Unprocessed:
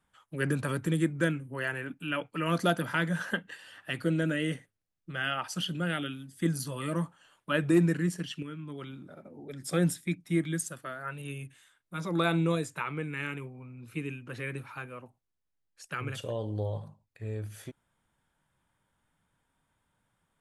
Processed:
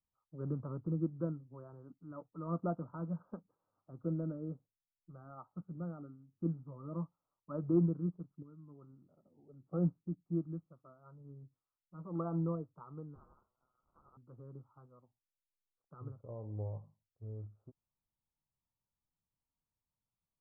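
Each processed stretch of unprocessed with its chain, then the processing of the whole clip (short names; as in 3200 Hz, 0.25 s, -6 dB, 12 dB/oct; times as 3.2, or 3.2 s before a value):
13.15–14.17 switching dead time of 0.17 ms + sample leveller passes 3 + inverted band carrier 3800 Hz
whole clip: steep low-pass 1300 Hz 96 dB/oct; low shelf 150 Hz +9 dB; upward expander 1.5:1, over -48 dBFS; gain -7.5 dB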